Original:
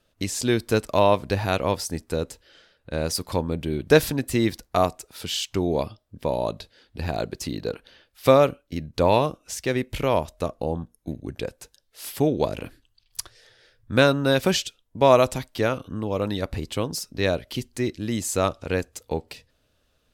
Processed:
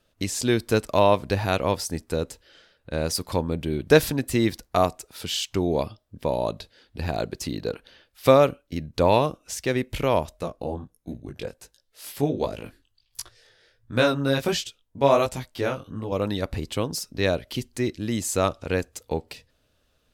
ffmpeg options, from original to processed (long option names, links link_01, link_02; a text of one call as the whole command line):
ffmpeg -i in.wav -filter_complex "[0:a]asettb=1/sr,asplit=3[link_01][link_02][link_03];[link_01]atrim=end=10.374[link_04];[link_02]atrim=start=10.37:end=16.12,asetpts=PTS-STARTPTS,afade=type=in:duration=0.004:curve=qsin,afade=type=out:start_time=5.746:duration=0.004:curve=qsin,flanger=delay=16.5:depth=5.2:speed=1.4[link_05];[link_03]atrim=start=16.116[link_06];[link_04][link_05]acrossfade=duration=0.004:curve1=hsin:curve2=qsin[link_07];[link_07][link_06]acrossfade=duration=0.004:curve1=qsin:curve2=hsin" out.wav